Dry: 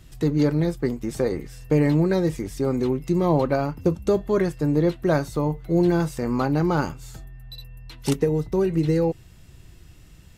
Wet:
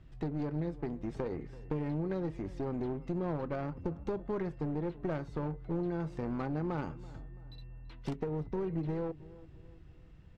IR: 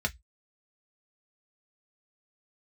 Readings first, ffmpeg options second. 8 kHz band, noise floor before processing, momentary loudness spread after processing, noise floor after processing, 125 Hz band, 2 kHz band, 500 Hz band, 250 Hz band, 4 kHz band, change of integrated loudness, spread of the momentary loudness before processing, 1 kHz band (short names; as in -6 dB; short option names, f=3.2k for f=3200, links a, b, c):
under -25 dB, -48 dBFS, 15 LU, -54 dBFS, -13.0 dB, -15.0 dB, -14.5 dB, -13.5 dB, -19.5 dB, -14.0 dB, 11 LU, -13.0 dB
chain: -filter_complex "[0:a]acompressor=threshold=-23dB:ratio=6,aeval=exprs='clip(val(0),-1,0.0447)':c=same,asplit=2[a][b];[b]adelay=333,lowpass=f=2k:p=1,volume=-18.5dB,asplit=2[c][d];[d]adelay=333,lowpass=f=2k:p=1,volume=0.44,asplit=2[e][f];[f]adelay=333,lowpass=f=2k:p=1,volume=0.44,asplit=2[g][h];[h]adelay=333,lowpass=f=2k:p=1,volume=0.44[i];[c][e][g][i]amix=inputs=4:normalize=0[j];[a][j]amix=inputs=2:normalize=0,adynamicsmooth=sensitivity=1.5:basefreq=2.4k,volume=-7dB"